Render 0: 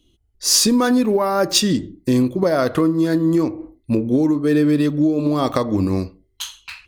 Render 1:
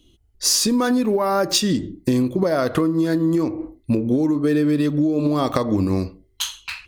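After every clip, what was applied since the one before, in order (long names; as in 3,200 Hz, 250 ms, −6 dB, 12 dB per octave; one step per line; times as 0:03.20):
downward compressor, threshold −20 dBFS, peak gain reduction 9 dB
level +4 dB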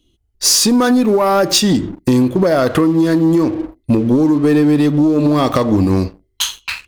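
leveller curve on the samples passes 2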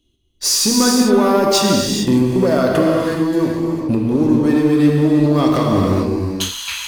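reverb whose tail is shaped and stops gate 470 ms flat, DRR −1.5 dB
level −5 dB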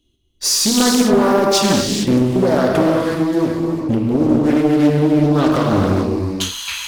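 highs frequency-modulated by the lows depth 0.44 ms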